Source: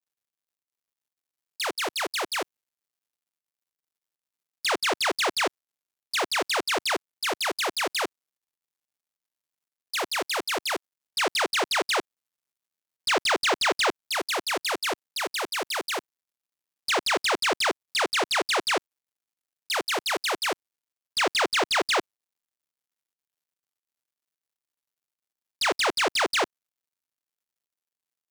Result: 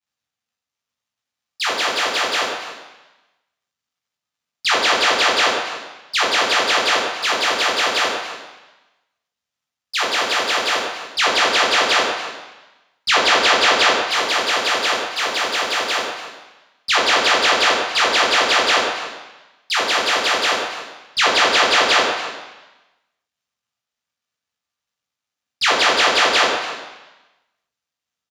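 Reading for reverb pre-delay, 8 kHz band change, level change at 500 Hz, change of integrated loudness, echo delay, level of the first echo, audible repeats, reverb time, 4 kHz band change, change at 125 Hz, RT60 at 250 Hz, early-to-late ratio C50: 11 ms, +6.5 dB, +7.5 dB, +9.5 dB, 287 ms, -14.0 dB, 1, 1.1 s, +10.5 dB, +10.5 dB, 1.1 s, 2.5 dB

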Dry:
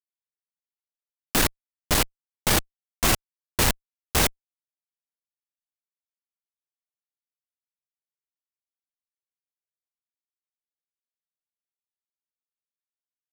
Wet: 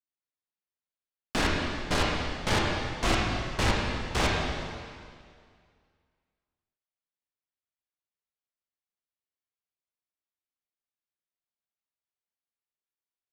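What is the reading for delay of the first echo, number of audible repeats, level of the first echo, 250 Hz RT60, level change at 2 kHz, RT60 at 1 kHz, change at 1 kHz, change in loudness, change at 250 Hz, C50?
no echo, no echo, no echo, 2.1 s, -1.0 dB, 2.1 s, 0.0 dB, -4.5 dB, 0.0 dB, -0.5 dB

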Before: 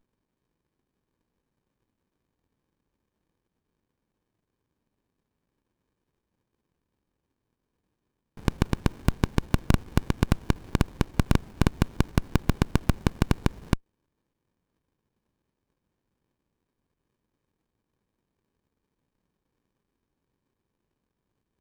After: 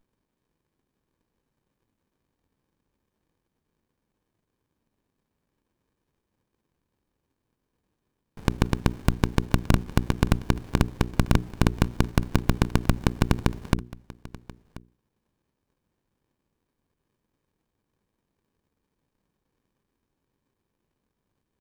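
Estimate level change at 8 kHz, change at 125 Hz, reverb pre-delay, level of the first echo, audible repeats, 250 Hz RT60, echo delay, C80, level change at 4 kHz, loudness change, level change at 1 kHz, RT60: +2.0 dB, +1.5 dB, no reverb, -20.0 dB, 1, no reverb, 1034 ms, no reverb, +2.0 dB, +1.5 dB, +2.0 dB, no reverb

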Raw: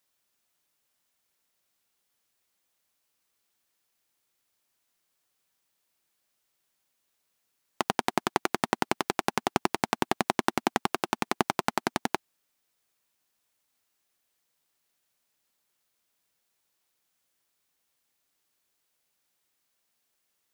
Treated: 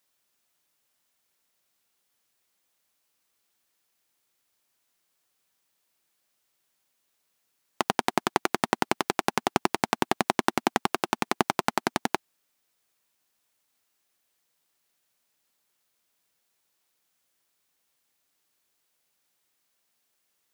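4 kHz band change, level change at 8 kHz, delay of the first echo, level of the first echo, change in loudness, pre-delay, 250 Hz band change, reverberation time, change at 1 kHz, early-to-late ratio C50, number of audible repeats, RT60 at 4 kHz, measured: +2.0 dB, +2.0 dB, no echo, no echo, +2.0 dB, no reverb, +1.5 dB, no reverb, +2.0 dB, no reverb, no echo, no reverb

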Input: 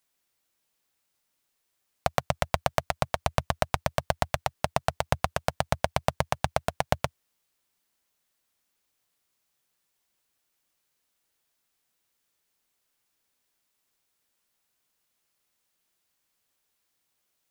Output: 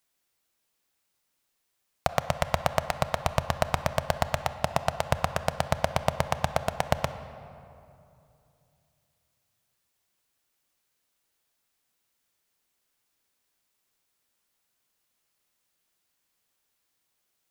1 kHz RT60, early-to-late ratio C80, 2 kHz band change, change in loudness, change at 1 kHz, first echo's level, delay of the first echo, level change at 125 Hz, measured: 2.7 s, 12.5 dB, 0.0 dB, +0.5 dB, 0.0 dB, no echo, no echo, +0.5 dB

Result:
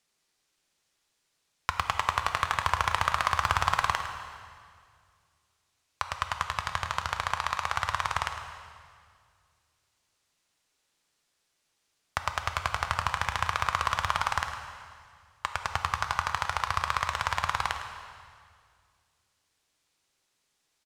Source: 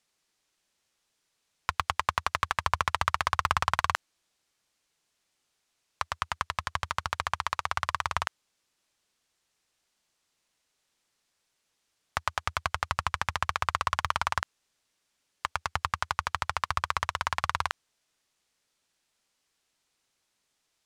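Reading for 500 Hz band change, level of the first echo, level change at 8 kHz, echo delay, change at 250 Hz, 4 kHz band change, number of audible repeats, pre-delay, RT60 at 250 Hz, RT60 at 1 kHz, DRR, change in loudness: +1.0 dB, -12.0 dB, +1.0 dB, 106 ms, +1.5 dB, +1.0 dB, 1, 3 ms, 2.2 s, 2.0 s, 5.0 dB, +1.0 dB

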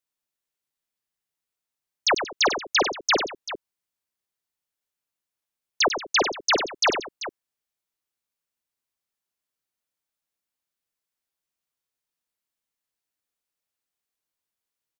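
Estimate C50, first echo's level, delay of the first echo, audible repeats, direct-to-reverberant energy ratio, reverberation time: no reverb, -8.5 dB, 97 ms, 3, no reverb, no reverb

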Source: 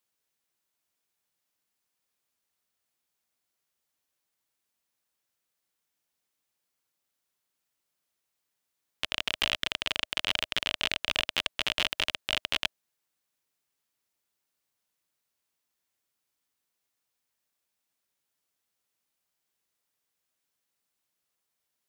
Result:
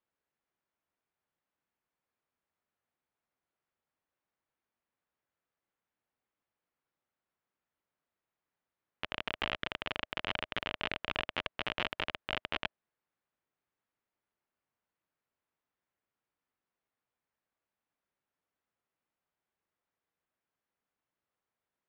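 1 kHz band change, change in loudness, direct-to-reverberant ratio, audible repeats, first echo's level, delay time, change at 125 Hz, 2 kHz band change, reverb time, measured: -0.5 dB, -7.5 dB, no reverb, no echo, no echo, no echo, 0.0 dB, -5.0 dB, no reverb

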